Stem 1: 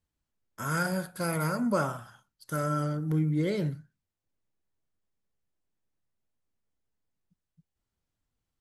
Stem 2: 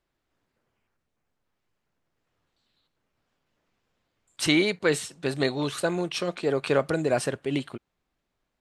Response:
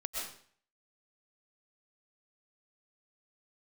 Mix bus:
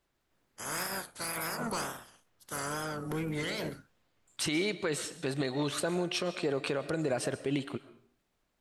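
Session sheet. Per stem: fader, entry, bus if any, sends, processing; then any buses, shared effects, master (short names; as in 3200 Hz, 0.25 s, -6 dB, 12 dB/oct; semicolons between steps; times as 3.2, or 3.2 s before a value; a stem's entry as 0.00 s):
-5.0 dB, 0.00 s, no send, spectral limiter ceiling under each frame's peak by 23 dB; soft clip -22 dBFS, distortion -16 dB; wow and flutter 83 cents
-0.5 dB, 0.00 s, send -14 dB, compressor 2.5:1, threshold -29 dBFS, peak gain reduction 8.5 dB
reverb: on, RT60 0.50 s, pre-delay 85 ms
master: limiter -21 dBFS, peak gain reduction 7 dB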